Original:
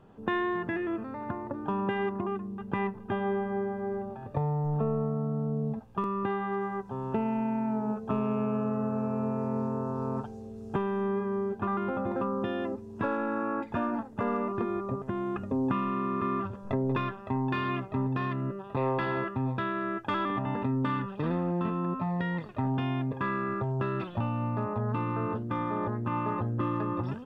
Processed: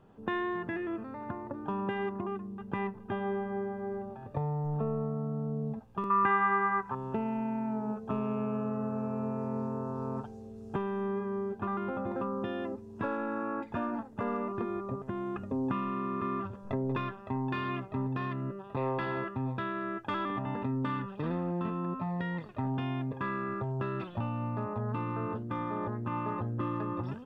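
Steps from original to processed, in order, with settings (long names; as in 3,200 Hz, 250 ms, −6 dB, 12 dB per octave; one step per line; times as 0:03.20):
0:06.10–0:06.95: flat-topped bell 1,500 Hz +14 dB
level −3.5 dB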